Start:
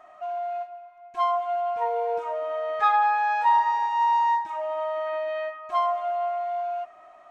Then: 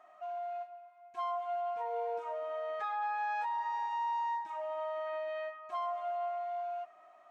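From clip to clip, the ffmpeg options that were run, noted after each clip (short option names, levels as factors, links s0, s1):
-af "highpass=f=210:p=1,alimiter=limit=0.0944:level=0:latency=1:release=107,volume=0.376"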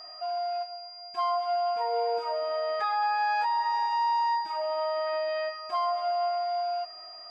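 -af "aeval=exprs='val(0)+0.00282*sin(2*PI*4800*n/s)':c=same,volume=2.51"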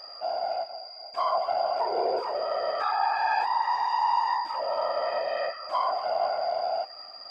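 -af "afftfilt=real='hypot(re,im)*cos(2*PI*random(0))':imag='hypot(re,im)*sin(2*PI*random(1))':win_size=512:overlap=0.75,volume=2.24"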